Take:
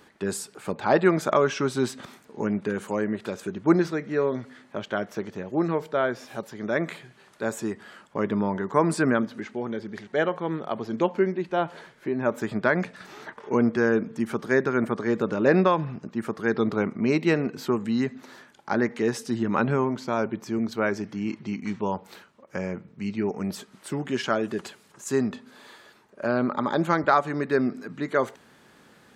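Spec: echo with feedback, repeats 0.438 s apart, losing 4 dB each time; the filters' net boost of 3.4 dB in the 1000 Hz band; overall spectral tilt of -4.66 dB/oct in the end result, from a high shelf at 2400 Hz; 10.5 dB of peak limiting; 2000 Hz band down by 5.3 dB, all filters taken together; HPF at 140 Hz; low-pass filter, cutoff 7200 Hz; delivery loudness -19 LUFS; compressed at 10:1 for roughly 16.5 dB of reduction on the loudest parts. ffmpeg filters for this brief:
-af "highpass=140,lowpass=7.2k,equalizer=f=1k:t=o:g=8,equalizer=f=2k:t=o:g=-8.5,highshelf=f=2.4k:g=-7.5,acompressor=threshold=-30dB:ratio=10,alimiter=level_in=4dB:limit=-24dB:level=0:latency=1,volume=-4dB,aecho=1:1:438|876|1314|1752|2190|2628|3066|3504|3942:0.631|0.398|0.25|0.158|0.0994|0.0626|0.0394|0.0249|0.0157,volume=18.5dB"

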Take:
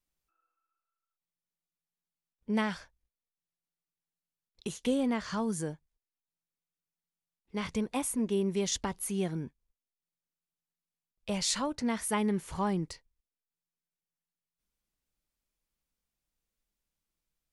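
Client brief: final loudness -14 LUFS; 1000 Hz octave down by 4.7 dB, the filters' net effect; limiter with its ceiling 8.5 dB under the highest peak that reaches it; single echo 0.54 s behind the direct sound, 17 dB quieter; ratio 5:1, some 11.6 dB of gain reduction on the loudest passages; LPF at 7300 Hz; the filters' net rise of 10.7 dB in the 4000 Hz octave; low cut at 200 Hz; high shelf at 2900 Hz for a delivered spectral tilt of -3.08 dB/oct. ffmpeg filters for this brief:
-af "highpass=200,lowpass=7.3k,equalizer=f=1k:t=o:g=-7,highshelf=f=2.9k:g=8.5,equalizer=f=4k:t=o:g=7,acompressor=threshold=-31dB:ratio=5,alimiter=level_in=1.5dB:limit=-24dB:level=0:latency=1,volume=-1.5dB,aecho=1:1:540:0.141,volume=23dB"

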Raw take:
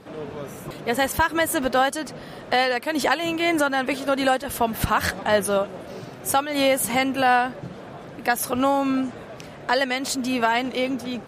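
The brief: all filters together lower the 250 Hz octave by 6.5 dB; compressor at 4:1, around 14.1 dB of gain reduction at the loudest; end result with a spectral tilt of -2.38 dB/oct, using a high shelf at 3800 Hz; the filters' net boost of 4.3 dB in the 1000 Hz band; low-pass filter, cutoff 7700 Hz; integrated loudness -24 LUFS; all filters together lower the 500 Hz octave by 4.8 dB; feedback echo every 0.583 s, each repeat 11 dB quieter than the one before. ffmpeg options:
-af "lowpass=7.7k,equalizer=f=250:t=o:g=-5.5,equalizer=f=500:t=o:g=-8.5,equalizer=f=1k:t=o:g=9,highshelf=f=3.8k:g=6.5,acompressor=threshold=-28dB:ratio=4,aecho=1:1:583|1166|1749:0.282|0.0789|0.0221,volume=7dB"

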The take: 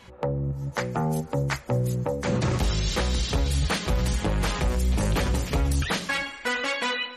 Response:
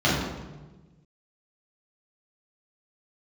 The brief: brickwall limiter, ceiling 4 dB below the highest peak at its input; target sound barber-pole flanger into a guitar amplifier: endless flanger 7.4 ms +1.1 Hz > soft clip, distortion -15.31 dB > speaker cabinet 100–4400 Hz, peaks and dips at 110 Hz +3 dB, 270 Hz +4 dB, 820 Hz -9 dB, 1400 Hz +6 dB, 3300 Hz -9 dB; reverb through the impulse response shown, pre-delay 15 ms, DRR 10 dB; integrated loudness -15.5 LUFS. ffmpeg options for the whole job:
-filter_complex "[0:a]alimiter=limit=-18dB:level=0:latency=1,asplit=2[a][b];[1:a]atrim=start_sample=2205,adelay=15[c];[b][c]afir=irnorm=-1:irlink=0,volume=-28dB[d];[a][d]amix=inputs=2:normalize=0,asplit=2[e][f];[f]adelay=7.4,afreqshift=1.1[g];[e][g]amix=inputs=2:normalize=1,asoftclip=threshold=-21dB,highpass=100,equalizer=f=110:t=q:w=4:g=3,equalizer=f=270:t=q:w=4:g=4,equalizer=f=820:t=q:w=4:g=-9,equalizer=f=1.4k:t=q:w=4:g=6,equalizer=f=3.3k:t=q:w=4:g=-9,lowpass=f=4.4k:w=0.5412,lowpass=f=4.4k:w=1.3066,volume=15.5dB"

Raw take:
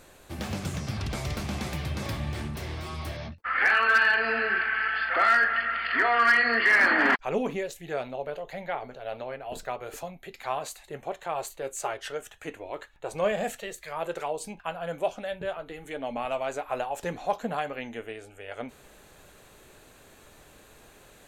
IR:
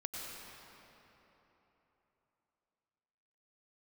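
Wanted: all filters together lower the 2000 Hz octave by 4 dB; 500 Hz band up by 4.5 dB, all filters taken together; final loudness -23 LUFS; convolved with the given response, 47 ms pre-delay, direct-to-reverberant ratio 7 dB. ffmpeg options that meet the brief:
-filter_complex "[0:a]equalizer=f=500:t=o:g=6,equalizer=f=2k:t=o:g=-5.5,asplit=2[a][b];[1:a]atrim=start_sample=2205,adelay=47[c];[b][c]afir=irnorm=-1:irlink=0,volume=-7.5dB[d];[a][d]amix=inputs=2:normalize=0,volume=5dB"

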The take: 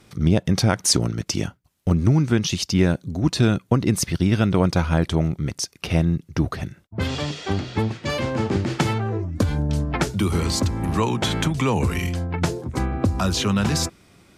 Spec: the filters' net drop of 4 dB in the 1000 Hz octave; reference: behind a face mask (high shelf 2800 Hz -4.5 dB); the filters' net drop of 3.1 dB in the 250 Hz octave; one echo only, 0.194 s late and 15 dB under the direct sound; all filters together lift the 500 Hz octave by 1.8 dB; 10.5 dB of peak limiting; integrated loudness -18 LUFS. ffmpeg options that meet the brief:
-af "equalizer=f=250:t=o:g=-6,equalizer=f=500:t=o:g=6,equalizer=f=1k:t=o:g=-6.5,alimiter=limit=-16.5dB:level=0:latency=1,highshelf=f=2.8k:g=-4.5,aecho=1:1:194:0.178,volume=9.5dB"

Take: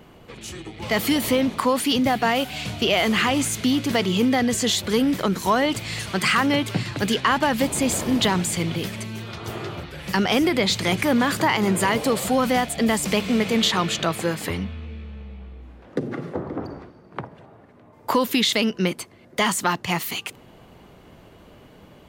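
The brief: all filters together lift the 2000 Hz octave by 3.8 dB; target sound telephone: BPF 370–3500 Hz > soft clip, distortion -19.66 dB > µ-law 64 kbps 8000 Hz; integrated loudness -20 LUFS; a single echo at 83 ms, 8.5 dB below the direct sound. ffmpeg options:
-af "highpass=370,lowpass=3.5k,equalizer=f=2k:t=o:g=5,aecho=1:1:83:0.376,asoftclip=threshold=-10.5dB,volume=3.5dB" -ar 8000 -c:a pcm_mulaw

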